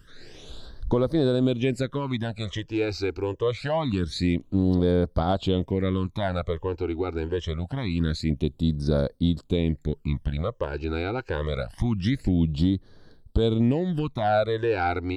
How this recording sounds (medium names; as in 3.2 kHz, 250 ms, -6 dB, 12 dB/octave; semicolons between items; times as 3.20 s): phasing stages 12, 0.25 Hz, lowest notch 180–2600 Hz